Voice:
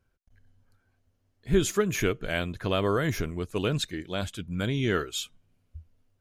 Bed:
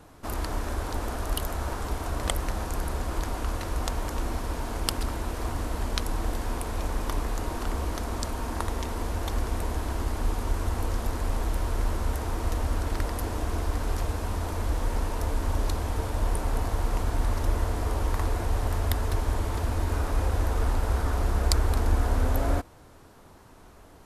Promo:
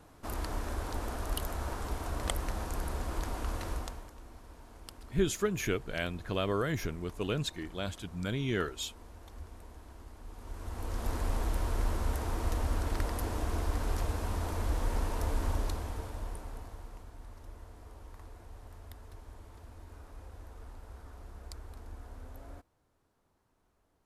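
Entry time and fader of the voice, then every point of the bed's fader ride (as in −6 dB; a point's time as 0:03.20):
3.65 s, −5.5 dB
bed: 0:03.72 −5.5 dB
0:04.14 −21 dB
0:10.25 −21 dB
0:11.11 −4 dB
0:15.46 −4 dB
0:17.13 −23 dB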